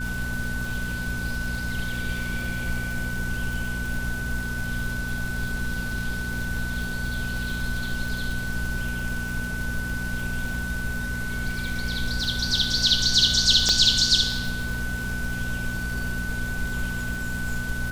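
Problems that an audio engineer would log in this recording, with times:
crackle 150/s -31 dBFS
hum 60 Hz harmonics 4 -32 dBFS
tone 1500 Hz -31 dBFS
13.69 pop -8 dBFS

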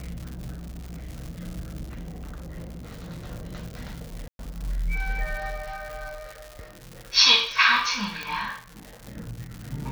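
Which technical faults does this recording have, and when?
crackle 200/s -32 dBFS
0.53–1.09 clipped -33 dBFS
1.83–3.27 clipped -33.5 dBFS
4.28–4.39 gap 0.112 s
8.23 pop -16 dBFS

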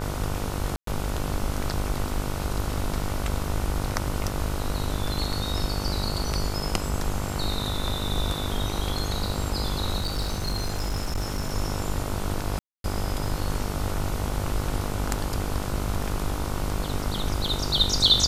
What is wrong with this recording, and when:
buzz 50 Hz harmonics 30 -31 dBFS
0.76–0.87 gap 0.113 s
9.98–11.55 clipped -23 dBFS
12.59–12.84 gap 0.252 s

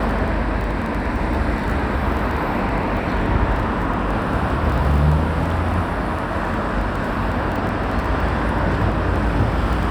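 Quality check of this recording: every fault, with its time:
crackle 13/s -25 dBFS

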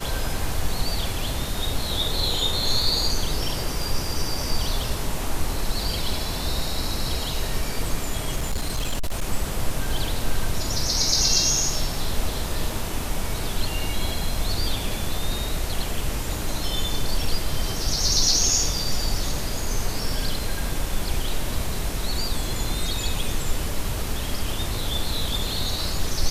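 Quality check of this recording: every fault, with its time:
8.36–9.22 clipped -20 dBFS

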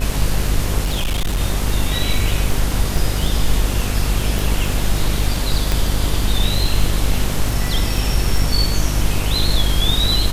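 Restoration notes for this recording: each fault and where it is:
buzz 50 Hz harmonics 37 -21 dBFS
crackle 17/s -20 dBFS
0.84–1.41 clipped -15 dBFS
2.97 gap 3.9 ms
4.39 pop
5.72 pop

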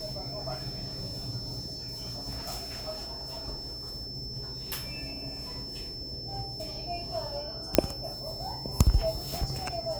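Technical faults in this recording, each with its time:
tone 5300 Hz -38 dBFS
7.75 pop -2 dBFS

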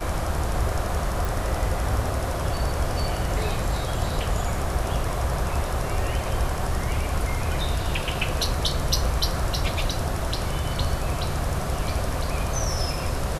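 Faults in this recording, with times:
1.25 pop

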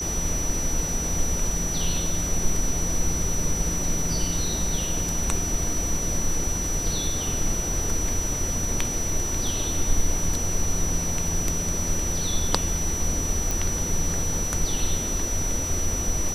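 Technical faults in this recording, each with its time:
tone 5900 Hz -28 dBFS
13.51 pop

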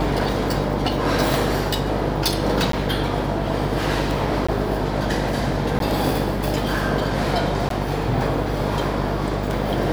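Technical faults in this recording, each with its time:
buzz 50 Hz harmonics 20 -26 dBFS
tick
2.72–2.73 gap 13 ms
4.47–4.49 gap 15 ms
5.79–5.8 gap 12 ms
7.69–7.7 gap 13 ms

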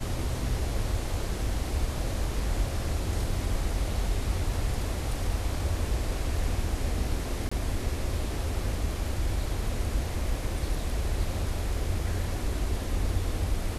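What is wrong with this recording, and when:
7.49–7.51 gap 25 ms

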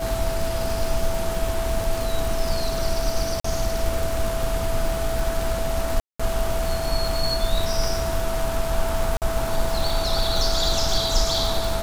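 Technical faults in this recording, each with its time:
crackle 260/s -26 dBFS
tone 660 Hz -27 dBFS
3.4–3.44 gap 44 ms
6–6.2 gap 0.195 s
9.17–9.22 gap 48 ms

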